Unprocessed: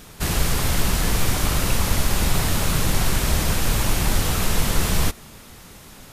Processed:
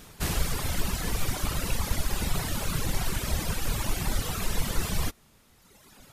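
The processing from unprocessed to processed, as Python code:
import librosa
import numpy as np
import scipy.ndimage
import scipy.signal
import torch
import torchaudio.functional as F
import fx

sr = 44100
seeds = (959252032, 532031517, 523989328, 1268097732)

y = fx.dereverb_blind(x, sr, rt60_s=1.8)
y = y * 10.0 ** (-5.0 / 20.0)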